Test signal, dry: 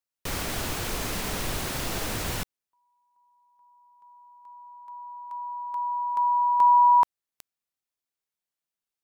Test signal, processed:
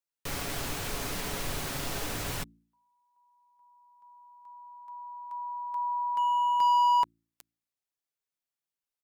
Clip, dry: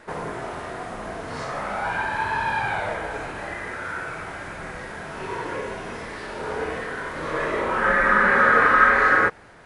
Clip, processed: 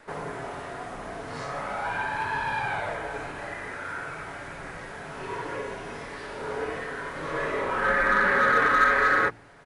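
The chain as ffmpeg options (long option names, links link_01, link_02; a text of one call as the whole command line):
ffmpeg -i in.wav -filter_complex "[0:a]aecho=1:1:7.1:0.31,bandreject=frequency=56.77:width_type=h:width=4,bandreject=frequency=113.54:width_type=h:width=4,bandreject=frequency=170.31:width_type=h:width=4,bandreject=frequency=227.08:width_type=h:width=4,bandreject=frequency=283.85:width_type=h:width=4,bandreject=frequency=340.62:width_type=h:width=4,acrossover=split=660|1200[link_01][link_02][link_03];[link_02]volume=26.5dB,asoftclip=hard,volume=-26.5dB[link_04];[link_01][link_04][link_03]amix=inputs=3:normalize=0,volume=-4dB" out.wav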